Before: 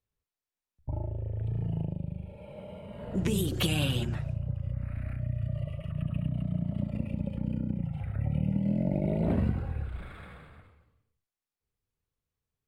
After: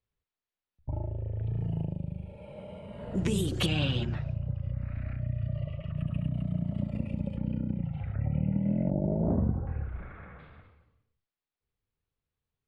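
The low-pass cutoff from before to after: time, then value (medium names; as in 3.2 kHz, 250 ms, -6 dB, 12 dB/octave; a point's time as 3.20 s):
low-pass 24 dB/octave
4.4 kHz
from 1.61 s 10 kHz
from 3.66 s 5.2 kHz
from 5.97 s 8.8 kHz
from 7.37 s 4.3 kHz
from 8.14 s 2.5 kHz
from 8.90 s 1.1 kHz
from 9.67 s 2.2 kHz
from 10.39 s 4.3 kHz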